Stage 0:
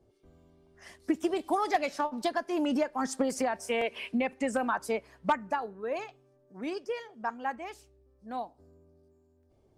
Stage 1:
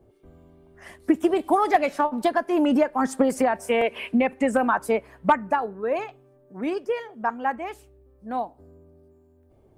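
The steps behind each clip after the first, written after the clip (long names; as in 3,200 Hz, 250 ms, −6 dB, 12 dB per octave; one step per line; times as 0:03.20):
parametric band 5,300 Hz −11.5 dB 1.3 octaves
level +8.5 dB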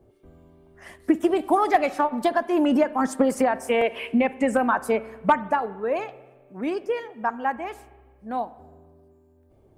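spring reverb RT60 1.3 s, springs 45/54 ms, chirp 50 ms, DRR 17 dB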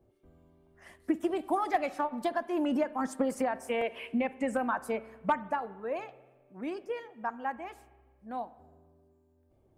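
notch filter 420 Hz, Q 12
level −9 dB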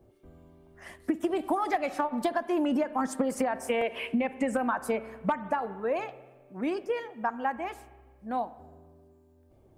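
downward compressor 6 to 1, threshold −31 dBFS, peak gain reduction 9 dB
level +7 dB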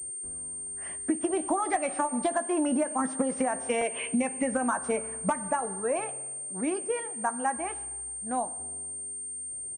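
double-tracking delay 16 ms −13 dB
switching amplifier with a slow clock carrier 8,700 Hz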